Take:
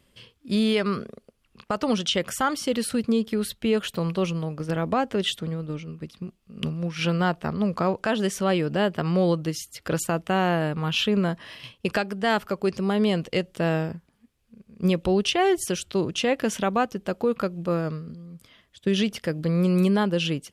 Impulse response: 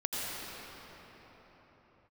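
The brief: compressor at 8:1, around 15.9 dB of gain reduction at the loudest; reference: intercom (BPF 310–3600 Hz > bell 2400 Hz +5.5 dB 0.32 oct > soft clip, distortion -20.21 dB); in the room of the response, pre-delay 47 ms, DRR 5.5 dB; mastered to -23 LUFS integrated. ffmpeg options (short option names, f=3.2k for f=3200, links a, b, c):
-filter_complex "[0:a]acompressor=threshold=-35dB:ratio=8,asplit=2[a][b];[1:a]atrim=start_sample=2205,adelay=47[c];[b][c]afir=irnorm=-1:irlink=0,volume=-12.5dB[d];[a][d]amix=inputs=2:normalize=0,highpass=310,lowpass=3.6k,equalizer=f=2.4k:t=o:w=0.32:g=5.5,asoftclip=threshold=-27.5dB,volume=19dB"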